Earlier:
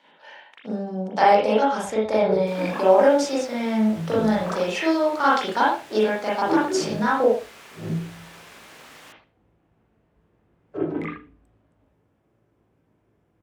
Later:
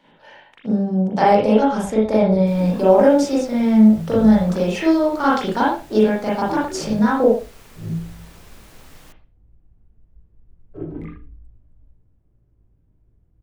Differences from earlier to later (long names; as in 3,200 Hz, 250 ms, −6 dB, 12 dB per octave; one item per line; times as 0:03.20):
first sound −11.5 dB
second sound: send −9.0 dB
master: remove meter weighting curve A